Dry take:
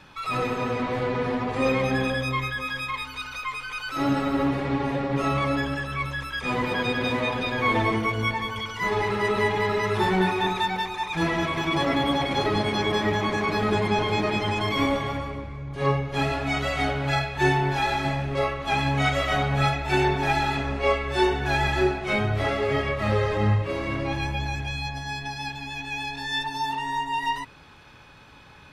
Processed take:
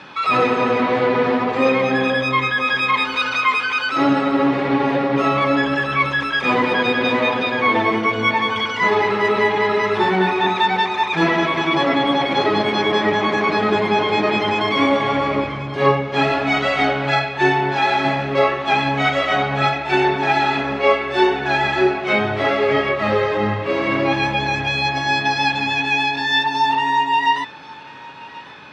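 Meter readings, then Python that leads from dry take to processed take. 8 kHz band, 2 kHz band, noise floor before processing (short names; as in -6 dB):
n/a, +8.5 dB, -43 dBFS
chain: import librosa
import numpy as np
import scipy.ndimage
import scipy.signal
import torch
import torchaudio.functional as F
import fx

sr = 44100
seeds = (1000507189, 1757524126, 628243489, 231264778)

y = fx.echo_feedback(x, sr, ms=1082, feedback_pct=40, wet_db=-21.0)
y = fx.rider(y, sr, range_db=10, speed_s=0.5)
y = fx.bandpass_edges(y, sr, low_hz=210.0, high_hz=4400.0)
y = y * librosa.db_to_amplitude(8.5)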